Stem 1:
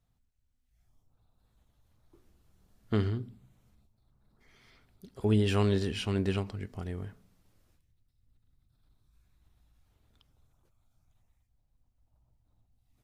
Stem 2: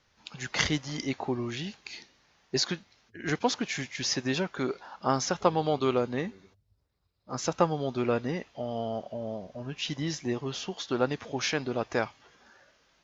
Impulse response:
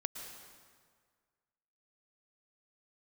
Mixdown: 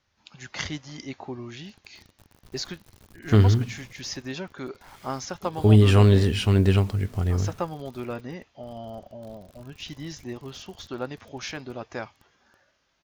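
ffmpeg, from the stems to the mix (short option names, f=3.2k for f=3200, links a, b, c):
-filter_complex "[0:a]equalizer=f=120:w=1.9:g=3,dynaudnorm=f=130:g=17:m=13dB,acrusher=bits=7:mix=0:aa=0.000001,adelay=400,volume=-3.5dB[a];[1:a]bandreject=f=460:w=12,volume=-5dB[b];[a][b]amix=inputs=2:normalize=0,equalizer=f=87:w=2.7:g=6"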